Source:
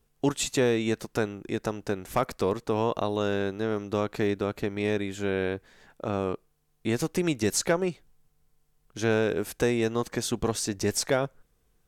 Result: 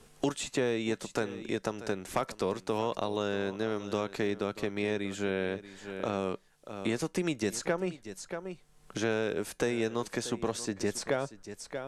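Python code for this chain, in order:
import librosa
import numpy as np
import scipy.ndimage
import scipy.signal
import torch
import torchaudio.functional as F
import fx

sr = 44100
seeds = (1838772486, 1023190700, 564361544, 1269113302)

y = scipy.signal.sosfilt(scipy.signal.butter(4, 11000.0, 'lowpass', fs=sr, output='sos'), x)
y = fx.peak_eq(y, sr, hz=61.0, db=-6.0, octaves=2.9)
y = fx.comb_fb(y, sr, f0_hz=190.0, decay_s=0.16, harmonics='odd', damping=0.0, mix_pct=40)
y = y + 10.0 ** (-17.0 / 20.0) * np.pad(y, (int(634 * sr / 1000.0), 0))[:len(y)]
y = fx.band_squash(y, sr, depth_pct=70)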